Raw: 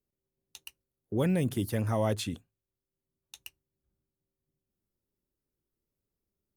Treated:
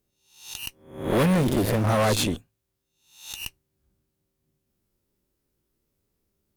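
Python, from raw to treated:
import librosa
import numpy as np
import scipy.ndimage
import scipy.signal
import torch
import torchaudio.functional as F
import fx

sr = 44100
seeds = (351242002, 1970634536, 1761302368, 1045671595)

y = fx.spec_swells(x, sr, rise_s=0.54)
y = fx.cheby_harmonics(y, sr, harmonics=(5, 8), levels_db=(-9, -10), full_scale_db=-14.5)
y = fx.backlash(y, sr, play_db=-26.5, at=(1.33, 1.89))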